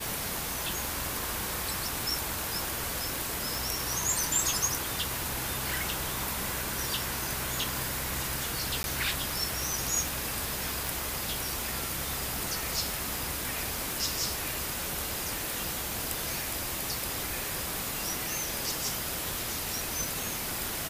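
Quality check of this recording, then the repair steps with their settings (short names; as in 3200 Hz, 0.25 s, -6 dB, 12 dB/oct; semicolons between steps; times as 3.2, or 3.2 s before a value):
tick 78 rpm
3.55 pop
8.83–8.84 gap 11 ms
10.87 pop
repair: de-click; interpolate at 8.83, 11 ms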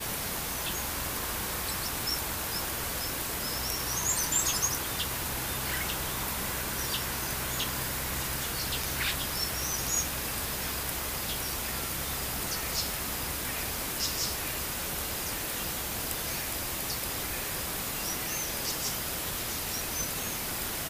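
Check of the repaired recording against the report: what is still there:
none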